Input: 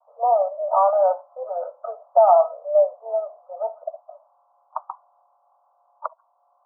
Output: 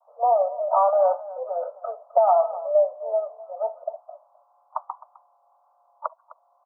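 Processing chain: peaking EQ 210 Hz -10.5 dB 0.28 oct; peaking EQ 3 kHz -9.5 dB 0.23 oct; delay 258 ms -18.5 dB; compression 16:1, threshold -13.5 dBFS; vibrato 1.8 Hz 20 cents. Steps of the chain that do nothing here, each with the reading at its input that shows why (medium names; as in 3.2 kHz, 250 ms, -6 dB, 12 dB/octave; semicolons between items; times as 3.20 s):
peaking EQ 210 Hz: input has nothing below 430 Hz; peaking EQ 3 kHz: input has nothing above 1.4 kHz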